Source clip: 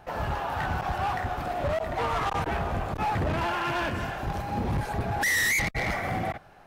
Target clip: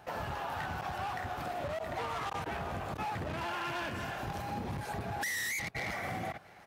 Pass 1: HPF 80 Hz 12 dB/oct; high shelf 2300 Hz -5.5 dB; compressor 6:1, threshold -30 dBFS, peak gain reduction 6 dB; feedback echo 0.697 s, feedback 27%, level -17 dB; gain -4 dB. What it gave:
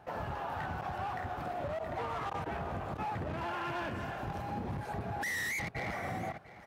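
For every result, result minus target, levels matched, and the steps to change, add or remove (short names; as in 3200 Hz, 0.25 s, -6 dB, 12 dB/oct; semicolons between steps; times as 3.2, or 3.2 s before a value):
echo-to-direct +7 dB; 4000 Hz band -4.5 dB
change: feedback echo 0.697 s, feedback 27%, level -24 dB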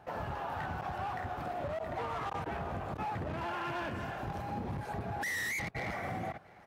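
4000 Hz band -4.5 dB
change: high shelf 2300 Hz +5 dB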